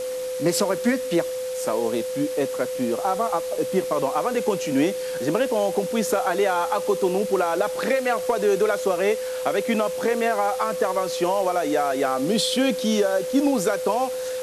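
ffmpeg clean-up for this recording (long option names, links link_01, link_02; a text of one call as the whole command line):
ffmpeg -i in.wav -af "bandreject=frequency=510:width=30,afwtdn=0.011" out.wav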